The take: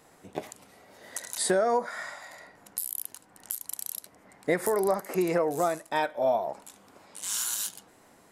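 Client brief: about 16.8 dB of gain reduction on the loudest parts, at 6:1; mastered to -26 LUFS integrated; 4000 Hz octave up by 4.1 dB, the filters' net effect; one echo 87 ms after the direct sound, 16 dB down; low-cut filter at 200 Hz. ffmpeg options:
-af "highpass=200,equalizer=f=4k:t=o:g=5,acompressor=threshold=-40dB:ratio=6,aecho=1:1:87:0.158,volume=17.5dB"

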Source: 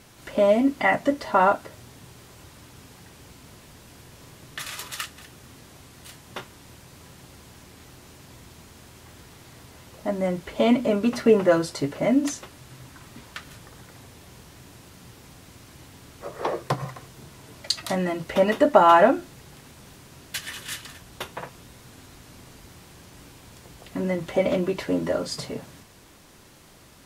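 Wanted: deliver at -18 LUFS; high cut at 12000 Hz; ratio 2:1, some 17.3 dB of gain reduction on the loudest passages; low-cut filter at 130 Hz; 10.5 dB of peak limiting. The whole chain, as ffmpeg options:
-af "highpass=130,lowpass=12k,acompressor=threshold=-44dB:ratio=2,volume=25.5dB,alimiter=limit=-3.5dB:level=0:latency=1"

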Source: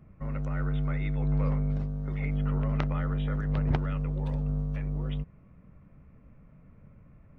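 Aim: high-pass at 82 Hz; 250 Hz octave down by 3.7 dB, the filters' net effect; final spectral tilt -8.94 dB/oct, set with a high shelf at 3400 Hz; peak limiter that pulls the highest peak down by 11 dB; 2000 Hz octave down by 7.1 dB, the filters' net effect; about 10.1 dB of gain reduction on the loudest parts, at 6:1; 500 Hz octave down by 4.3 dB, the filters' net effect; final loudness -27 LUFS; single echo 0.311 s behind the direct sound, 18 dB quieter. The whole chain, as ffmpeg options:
-af "highpass=82,equalizer=f=250:t=o:g=-6.5,equalizer=f=500:t=o:g=-3,equalizer=f=2k:t=o:g=-7.5,highshelf=f=3.4k:g=-5.5,acompressor=threshold=-36dB:ratio=6,alimiter=level_in=11.5dB:limit=-24dB:level=0:latency=1,volume=-11.5dB,aecho=1:1:311:0.126,volume=15.5dB"

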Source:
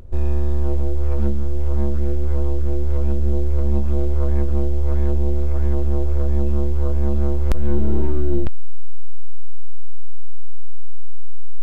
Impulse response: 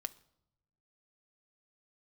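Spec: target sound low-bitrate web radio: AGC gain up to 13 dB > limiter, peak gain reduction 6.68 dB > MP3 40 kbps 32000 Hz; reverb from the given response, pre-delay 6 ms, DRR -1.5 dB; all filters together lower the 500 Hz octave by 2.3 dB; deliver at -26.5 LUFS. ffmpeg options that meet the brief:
-filter_complex "[0:a]equalizer=f=500:t=o:g=-3.5,asplit=2[a][b];[1:a]atrim=start_sample=2205,adelay=6[c];[b][c]afir=irnorm=-1:irlink=0,volume=3.5dB[d];[a][d]amix=inputs=2:normalize=0,dynaudnorm=m=13dB,alimiter=limit=-7.5dB:level=0:latency=1,volume=6dB" -ar 32000 -c:a libmp3lame -b:a 40k

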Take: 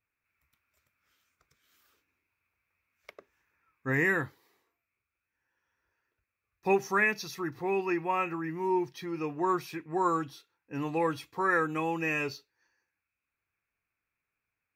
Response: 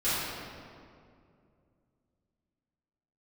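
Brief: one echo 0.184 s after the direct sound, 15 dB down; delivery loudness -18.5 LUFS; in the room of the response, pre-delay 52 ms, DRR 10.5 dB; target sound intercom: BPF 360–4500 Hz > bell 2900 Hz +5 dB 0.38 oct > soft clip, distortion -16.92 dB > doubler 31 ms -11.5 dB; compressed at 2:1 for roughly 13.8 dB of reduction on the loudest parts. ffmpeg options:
-filter_complex "[0:a]acompressor=threshold=-48dB:ratio=2,aecho=1:1:184:0.178,asplit=2[a][b];[1:a]atrim=start_sample=2205,adelay=52[c];[b][c]afir=irnorm=-1:irlink=0,volume=-22dB[d];[a][d]amix=inputs=2:normalize=0,highpass=360,lowpass=4.5k,equalizer=f=2.9k:t=o:w=0.38:g=5,asoftclip=threshold=-35dB,asplit=2[e][f];[f]adelay=31,volume=-11.5dB[g];[e][g]amix=inputs=2:normalize=0,volume=26dB"

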